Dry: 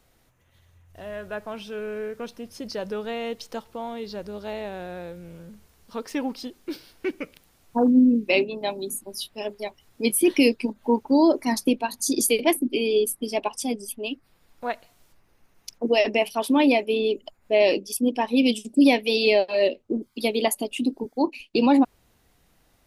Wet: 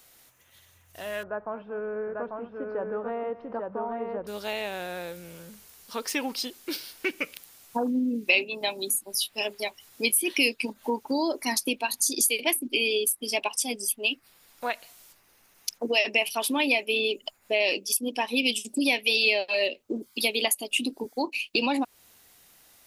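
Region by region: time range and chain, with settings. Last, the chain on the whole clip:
1.23–4.27 s: low-pass 1.3 kHz 24 dB/octave + multi-tap echo 231/843 ms -17/-3.5 dB
whole clip: tilt EQ +3 dB/octave; compression 2.5:1, threshold -30 dBFS; dynamic bell 2.6 kHz, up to +6 dB, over -45 dBFS, Q 2.7; trim +3 dB

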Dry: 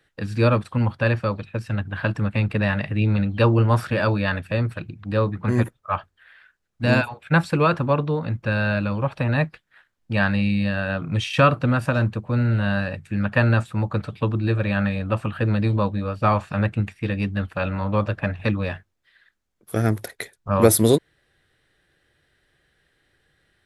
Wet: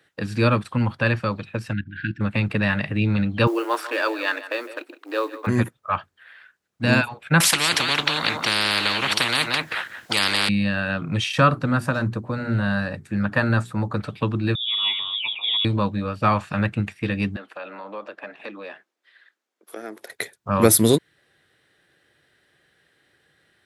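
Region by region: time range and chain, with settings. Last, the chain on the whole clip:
1.73–2.21 s: distance through air 170 m + level held to a coarse grid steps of 12 dB + brick-wall FIR band-stop 370–1400 Hz
3.47–5.47 s: companding laws mixed up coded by A + brick-wall FIR high-pass 270 Hz + delay 155 ms -16 dB
7.40–10.49 s: delay 180 ms -15.5 dB + spectrum-flattening compressor 10:1
11.32–14.01 s: peaking EQ 2.7 kHz -7.5 dB 0.75 oct + hum notches 60/120/180/240/300/360/420 Hz
14.55–15.65 s: static phaser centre 500 Hz, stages 6 + phase dispersion highs, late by 139 ms, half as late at 470 Hz + frequency inversion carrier 3.6 kHz
17.36–20.10 s: high-pass 290 Hz 24 dB/octave + compression 2:1, threshold -44 dBFS + treble shelf 8.6 kHz -9 dB
whole clip: Bessel high-pass 150 Hz; dynamic bell 590 Hz, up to -6 dB, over -33 dBFS, Q 0.88; trim +3.5 dB

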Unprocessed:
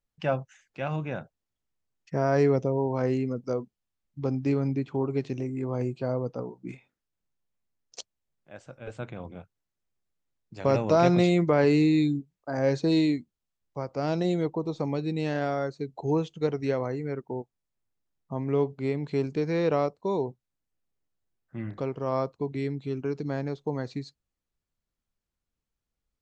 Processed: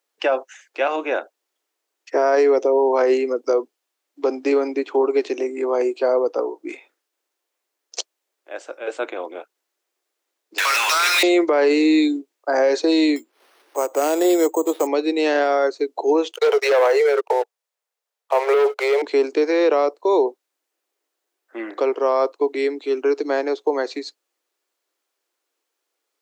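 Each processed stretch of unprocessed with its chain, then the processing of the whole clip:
10.58–11.23 s: high-pass 1.5 kHz 24 dB/octave + power-law waveshaper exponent 0.35
13.16–14.87 s: median filter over 9 samples + upward compressor, threshold -36 dBFS + careless resampling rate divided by 6×, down none, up hold
16.31–19.02 s: steep high-pass 420 Hz 96 dB/octave + waveshaping leveller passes 3
whole clip: steep high-pass 320 Hz 48 dB/octave; loudness maximiser +22 dB; trim -8.5 dB

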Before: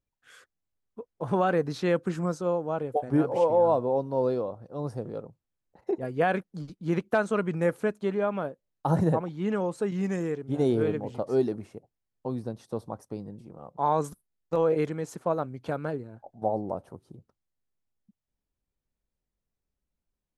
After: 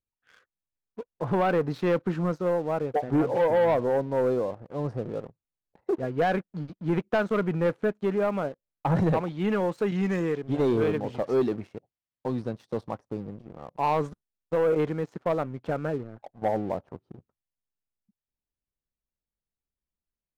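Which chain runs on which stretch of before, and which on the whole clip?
8.95–13.00 s: high-pass 45 Hz 6 dB/octave + treble shelf 2.3 kHz +11.5 dB
whole clip: low-pass 3 kHz 12 dB/octave; waveshaping leveller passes 2; trim -4.5 dB

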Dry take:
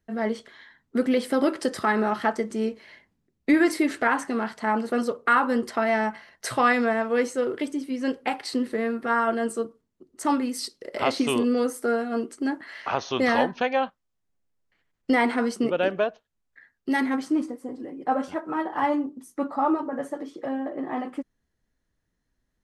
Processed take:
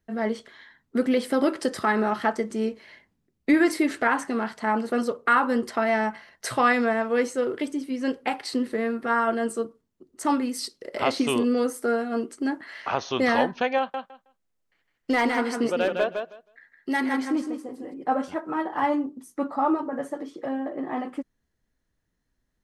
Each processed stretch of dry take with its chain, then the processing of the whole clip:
13.78–17.94 s: bass shelf 230 Hz -6.5 dB + hard clipper -16 dBFS + feedback delay 159 ms, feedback 16%, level -5.5 dB
whole clip: none

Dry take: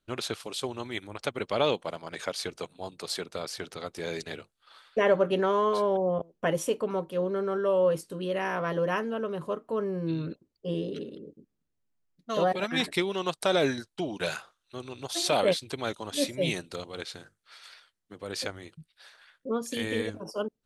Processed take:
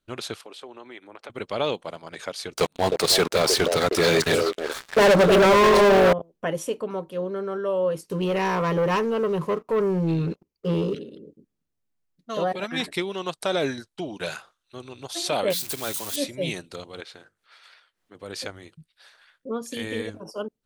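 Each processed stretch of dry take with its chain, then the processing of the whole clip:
0.41–1.30 s: three-band isolator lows -22 dB, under 240 Hz, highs -13 dB, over 3 kHz + compression 3:1, threshold -38 dBFS
2.54–6.13 s: repeats whose band climbs or falls 310 ms, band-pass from 480 Hz, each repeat 1.4 oct, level -5 dB + waveshaping leveller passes 5
8.05–10.95 s: rippled EQ curve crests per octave 0.8, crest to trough 7 dB + waveshaping leveller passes 2
15.50–16.16 s: zero-crossing glitches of -23 dBFS + hum notches 60/120/180/240/300 Hz
17.00–18.15 s: tone controls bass -9 dB, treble -8 dB + upward compressor, threshold -59 dBFS
whole clip: none

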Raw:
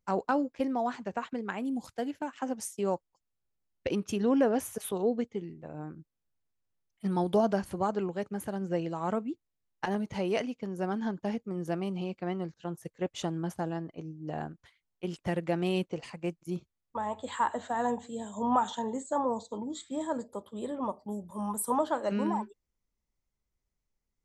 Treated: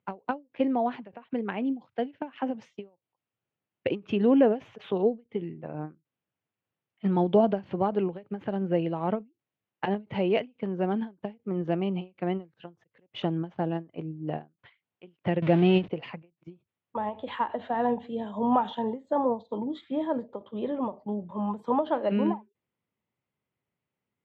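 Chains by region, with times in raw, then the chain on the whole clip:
15.42–15.88 s: jump at every zero crossing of -33 dBFS + bass shelf 130 Hz +10 dB
whole clip: dynamic bell 1.3 kHz, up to -7 dB, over -46 dBFS, Q 1.2; elliptic band-pass 110–3000 Hz, stop band 50 dB; endings held to a fixed fall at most 260 dB/s; trim +6 dB

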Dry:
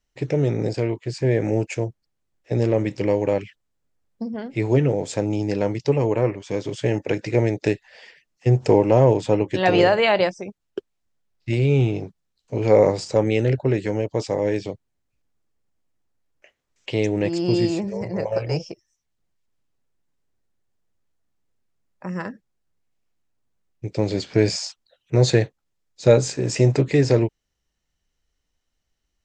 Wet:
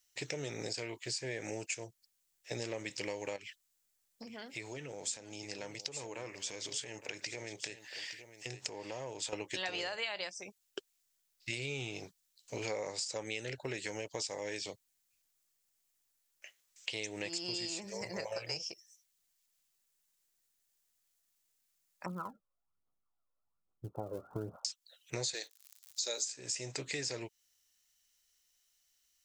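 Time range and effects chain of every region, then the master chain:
3.36–9.33 s: compression 3:1, threshold -32 dBFS + delay 863 ms -13 dB
22.06–24.65 s: Chebyshev low-pass 1.4 kHz, order 8 + phaser 1.2 Hz, delay 2 ms, feedback 62%
25.33–26.24 s: high-pass 280 Hz 24 dB/octave + high-order bell 5.1 kHz +10 dB 1.3 oct + crackle 120 per s -47 dBFS
whole clip: pre-emphasis filter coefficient 0.97; compression 6:1, threshold -47 dBFS; trim +11 dB

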